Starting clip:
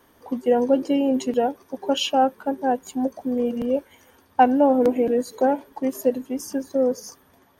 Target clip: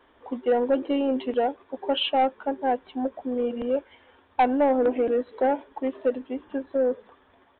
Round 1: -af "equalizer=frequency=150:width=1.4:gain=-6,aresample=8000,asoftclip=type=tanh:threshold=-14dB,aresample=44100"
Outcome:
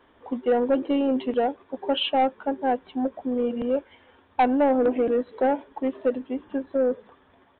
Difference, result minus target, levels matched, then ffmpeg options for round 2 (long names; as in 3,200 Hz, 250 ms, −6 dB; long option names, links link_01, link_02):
125 Hz band +3.0 dB
-af "equalizer=frequency=150:width=1.4:gain=-14,aresample=8000,asoftclip=type=tanh:threshold=-14dB,aresample=44100"